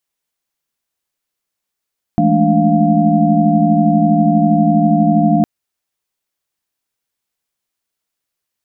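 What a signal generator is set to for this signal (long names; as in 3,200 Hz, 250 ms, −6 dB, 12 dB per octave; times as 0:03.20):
held notes E3/G#3/A3/D4/F5 sine, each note −15.5 dBFS 3.26 s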